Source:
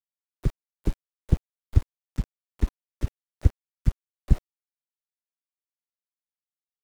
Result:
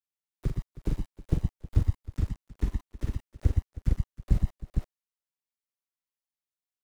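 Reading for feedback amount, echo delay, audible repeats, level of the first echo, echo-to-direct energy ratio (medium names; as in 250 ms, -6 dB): no regular repeats, 44 ms, 4, -7.0 dB, 0.0 dB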